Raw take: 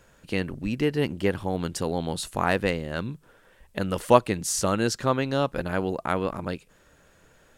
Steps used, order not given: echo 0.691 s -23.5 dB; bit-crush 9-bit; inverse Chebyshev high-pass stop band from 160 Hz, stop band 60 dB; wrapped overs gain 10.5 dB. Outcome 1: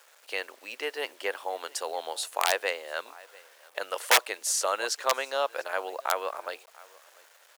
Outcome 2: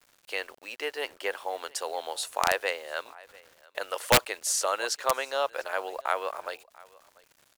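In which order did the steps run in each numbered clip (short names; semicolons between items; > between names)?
echo > wrapped overs > bit-crush > inverse Chebyshev high-pass; inverse Chebyshev high-pass > bit-crush > echo > wrapped overs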